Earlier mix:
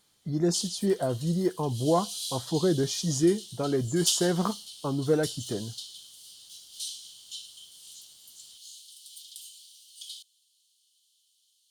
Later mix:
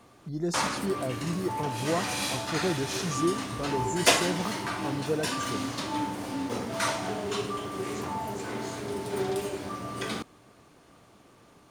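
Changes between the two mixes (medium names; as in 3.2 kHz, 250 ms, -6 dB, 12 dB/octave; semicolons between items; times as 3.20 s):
speech -5.0 dB; background: remove rippled Chebyshev high-pass 3 kHz, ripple 3 dB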